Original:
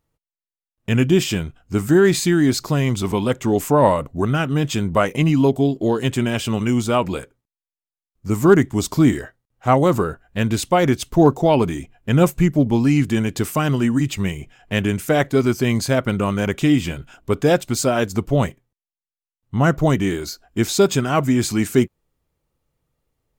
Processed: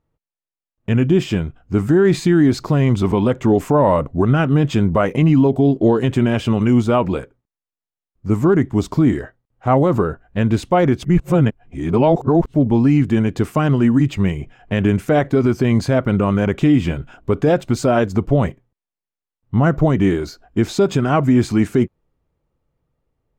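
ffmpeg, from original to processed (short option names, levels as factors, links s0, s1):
-filter_complex "[0:a]asplit=3[s0][s1][s2];[s0]atrim=end=11.042[s3];[s1]atrim=start=11.038:end=12.542,asetpts=PTS-STARTPTS,areverse[s4];[s2]atrim=start=12.538[s5];[s3][s4]acrossfade=d=0.004:c1=hsin:c2=hsin[s6];[s6][s5]acrossfade=d=0.004:c1=hsin:c2=hsin,lowpass=f=1300:p=1,dynaudnorm=f=390:g=9:m=3.76,alimiter=limit=0.398:level=0:latency=1:release=48,volume=1.33"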